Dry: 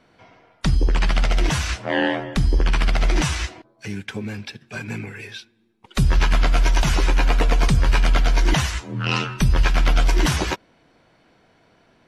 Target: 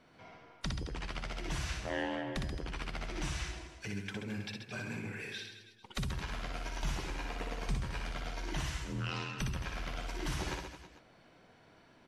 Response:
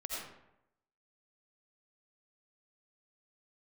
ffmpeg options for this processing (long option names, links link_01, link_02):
-af "acompressor=threshold=-35dB:ratio=2.5,aecho=1:1:60|132|218.4|322.1|446.5:0.631|0.398|0.251|0.158|0.1,volume=-6dB"